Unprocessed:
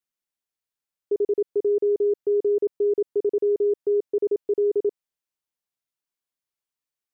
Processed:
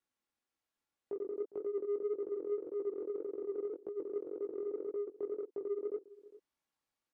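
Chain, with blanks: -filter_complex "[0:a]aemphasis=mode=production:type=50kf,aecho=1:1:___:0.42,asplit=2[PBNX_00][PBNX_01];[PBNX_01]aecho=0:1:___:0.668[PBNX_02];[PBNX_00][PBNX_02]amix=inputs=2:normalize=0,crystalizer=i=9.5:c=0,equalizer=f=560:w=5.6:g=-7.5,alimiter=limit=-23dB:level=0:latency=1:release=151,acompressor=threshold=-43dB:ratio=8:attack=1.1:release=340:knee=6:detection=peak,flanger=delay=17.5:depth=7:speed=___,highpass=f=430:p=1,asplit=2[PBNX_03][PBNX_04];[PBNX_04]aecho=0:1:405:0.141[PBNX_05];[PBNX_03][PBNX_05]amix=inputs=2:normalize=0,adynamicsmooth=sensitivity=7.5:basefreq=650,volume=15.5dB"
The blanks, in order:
3.6, 1072, 1.8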